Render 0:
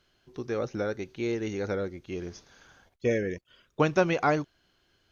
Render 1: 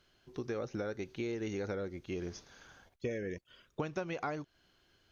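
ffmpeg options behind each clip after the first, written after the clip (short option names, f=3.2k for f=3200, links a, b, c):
-af "acompressor=threshold=-33dB:ratio=8,volume=-1dB"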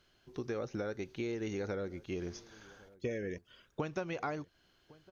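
-filter_complex "[0:a]asplit=2[a][b];[b]adelay=1108,volume=-22dB,highshelf=f=4k:g=-24.9[c];[a][c]amix=inputs=2:normalize=0"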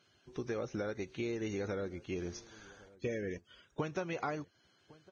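-ar 22050 -c:a libvorbis -b:a 16k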